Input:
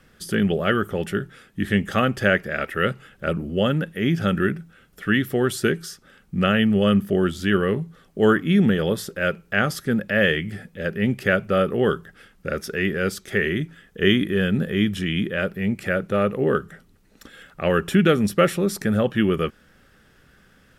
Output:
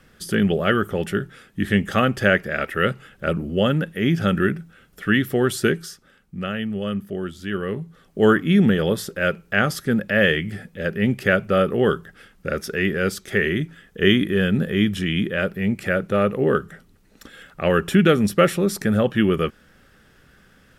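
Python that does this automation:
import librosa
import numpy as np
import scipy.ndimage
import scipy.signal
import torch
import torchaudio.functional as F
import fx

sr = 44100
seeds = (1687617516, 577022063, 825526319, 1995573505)

y = fx.gain(x, sr, db=fx.line((5.72, 1.5), (6.41, -8.0), (7.43, -8.0), (8.19, 1.5)))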